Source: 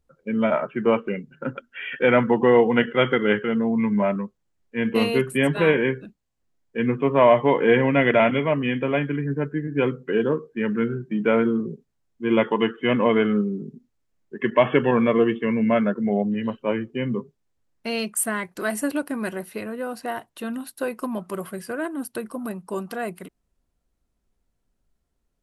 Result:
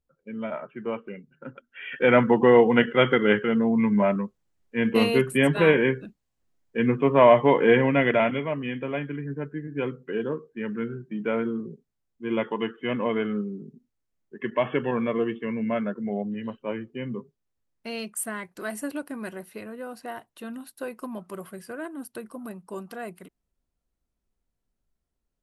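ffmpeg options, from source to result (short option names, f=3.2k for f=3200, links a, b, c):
-af "afade=t=in:st=1.66:d=0.5:silence=0.281838,afade=t=out:st=7.57:d=0.93:silence=0.446684"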